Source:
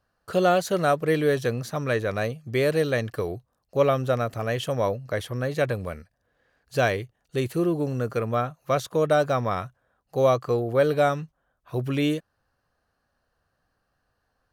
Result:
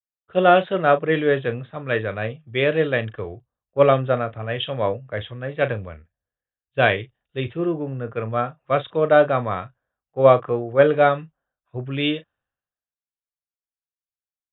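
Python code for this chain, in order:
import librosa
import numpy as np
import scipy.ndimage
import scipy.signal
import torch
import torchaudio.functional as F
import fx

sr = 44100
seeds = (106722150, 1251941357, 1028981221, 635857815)

y = scipy.signal.sosfilt(scipy.signal.cheby1(10, 1.0, 3700.0, 'lowpass', fs=sr, output='sos'), x)
y = fx.peak_eq(y, sr, hz=2300.0, db=2.5, octaves=2.3)
y = fx.doubler(y, sr, ms=37.0, db=-12)
y = fx.band_widen(y, sr, depth_pct=100)
y = y * 10.0 ** (2.0 / 20.0)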